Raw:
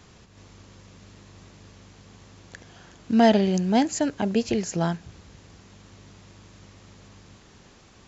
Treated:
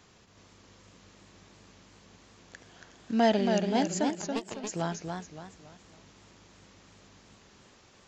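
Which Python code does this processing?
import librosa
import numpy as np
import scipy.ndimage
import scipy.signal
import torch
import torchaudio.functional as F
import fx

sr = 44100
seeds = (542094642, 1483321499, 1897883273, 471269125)

y = fx.power_curve(x, sr, exponent=3.0, at=(4.1, 4.67))
y = fx.low_shelf(y, sr, hz=170.0, db=-8.5)
y = fx.echo_warbled(y, sr, ms=280, feedback_pct=38, rate_hz=2.8, cents=127, wet_db=-5.0)
y = F.gain(torch.from_numpy(y), -5.0).numpy()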